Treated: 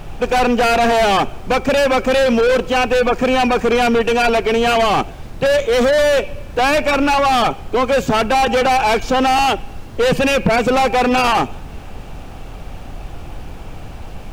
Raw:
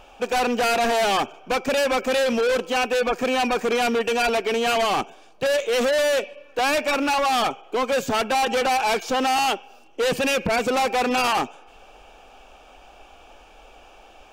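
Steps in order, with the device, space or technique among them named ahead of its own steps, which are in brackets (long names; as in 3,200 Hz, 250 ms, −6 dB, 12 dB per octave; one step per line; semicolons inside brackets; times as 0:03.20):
car interior (parametric band 150 Hz +7 dB 0.77 octaves; high-shelf EQ 4,300 Hz −7 dB; brown noise bed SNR 12 dB)
0:05.58–0:06.07: notch filter 2,700 Hz, Q 9.3
level +7 dB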